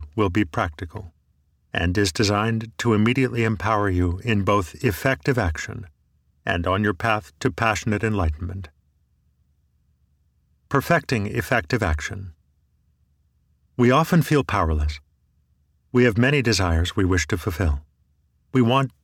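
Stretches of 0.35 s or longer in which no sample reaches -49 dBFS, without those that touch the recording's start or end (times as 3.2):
1.1–1.73
5.9–6.46
8.7–10.71
12.33–13.78
15–15.93
17.84–18.54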